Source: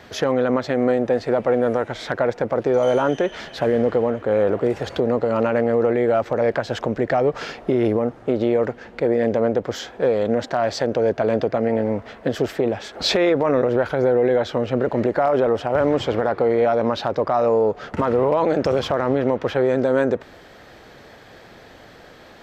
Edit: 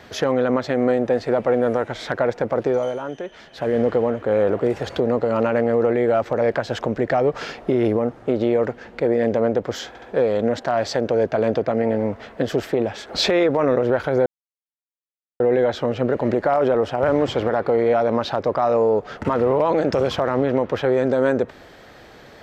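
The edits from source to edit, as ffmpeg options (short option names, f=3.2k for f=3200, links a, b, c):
-filter_complex "[0:a]asplit=6[a][b][c][d][e][f];[a]atrim=end=2.95,asetpts=PTS-STARTPTS,afade=t=out:st=2.66:d=0.29:silence=0.316228[g];[b]atrim=start=2.95:end=3.5,asetpts=PTS-STARTPTS,volume=-10dB[h];[c]atrim=start=3.5:end=9.952,asetpts=PTS-STARTPTS,afade=t=in:d=0.29:silence=0.316228[i];[d]atrim=start=9.878:end=9.952[j];[e]atrim=start=9.878:end=14.12,asetpts=PTS-STARTPTS,afade=t=out:st=4.238:d=0.004:c=hsin,apad=pad_dur=1.14[k];[f]atrim=start=14.12,asetpts=PTS-STARTPTS,afade=t=in:d=0.004:c=hsin[l];[g][h][i]concat=n=3:v=0:a=1[m];[m][j]acrossfade=d=0.004:c1=hsin:c2=hsin[n];[k][l]concat=n=2:v=0:a=1[o];[n][o]acrossfade=d=0.004:c1=hsin:c2=hsin"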